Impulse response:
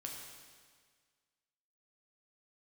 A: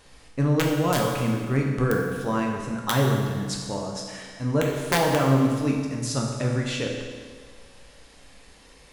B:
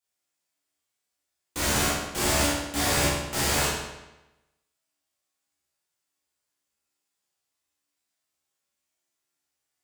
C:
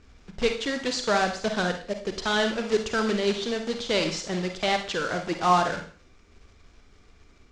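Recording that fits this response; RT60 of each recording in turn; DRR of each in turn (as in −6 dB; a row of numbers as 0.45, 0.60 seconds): A; 1.7, 1.0, 0.45 seconds; −1.0, −9.5, 5.0 decibels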